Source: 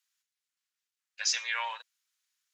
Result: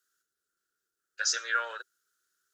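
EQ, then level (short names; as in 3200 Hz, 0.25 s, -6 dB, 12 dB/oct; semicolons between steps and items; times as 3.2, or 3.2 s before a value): EQ curve 250 Hz 0 dB, 390 Hz +12 dB, 980 Hz -19 dB, 1400 Hz +10 dB, 2200 Hz -18 dB, 3300 Hz -11 dB, 8700 Hz -4 dB; dynamic EQ 2200 Hz, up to -4 dB, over -41 dBFS, Q 0.97; +8.0 dB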